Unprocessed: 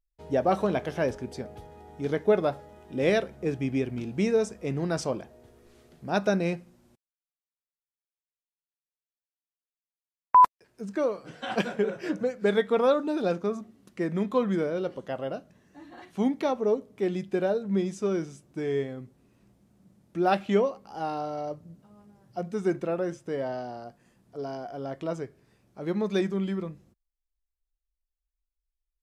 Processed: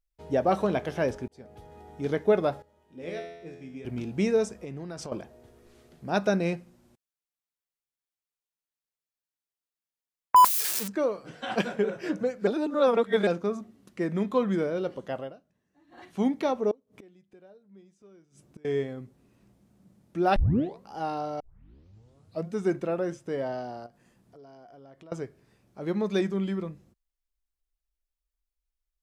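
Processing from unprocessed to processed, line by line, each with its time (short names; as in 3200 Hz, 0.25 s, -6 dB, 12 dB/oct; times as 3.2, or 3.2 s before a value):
1.28–1.77 fade in linear
2.62–3.85 resonator 85 Hz, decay 0.99 s, mix 90%
4.51–5.12 compressor 12:1, threshold -34 dBFS
10.36–10.88 switching spikes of -17.5 dBFS
12.47–13.27 reverse
15.17–16.04 dip -16 dB, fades 0.17 s
16.71–18.65 flipped gate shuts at -33 dBFS, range -27 dB
20.36 tape start 0.47 s
21.4 tape start 1.09 s
23.86–25.12 compressor 4:1, threshold -51 dBFS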